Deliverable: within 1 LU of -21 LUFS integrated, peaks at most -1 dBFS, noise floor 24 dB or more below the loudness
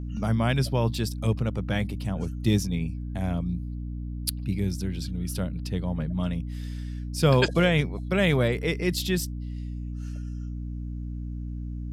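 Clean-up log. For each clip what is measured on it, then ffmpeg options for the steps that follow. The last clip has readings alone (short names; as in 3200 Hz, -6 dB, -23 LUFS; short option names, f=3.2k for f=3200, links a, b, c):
hum 60 Hz; harmonics up to 300 Hz; hum level -31 dBFS; loudness -28.0 LUFS; peak -6.5 dBFS; loudness target -21.0 LUFS
-> -af "bandreject=f=60:t=h:w=6,bandreject=f=120:t=h:w=6,bandreject=f=180:t=h:w=6,bandreject=f=240:t=h:w=6,bandreject=f=300:t=h:w=6"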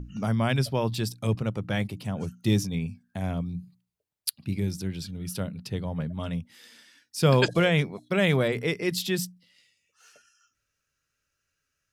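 hum none; loudness -28.0 LUFS; peak -6.5 dBFS; loudness target -21.0 LUFS
-> -af "volume=7dB,alimiter=limit=-1dB:level=0:latency=1"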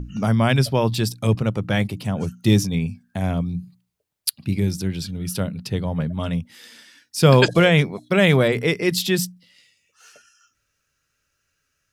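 loudness -21.0 LUFS; peak -1.0 dBFS; noise floor -74 dBFS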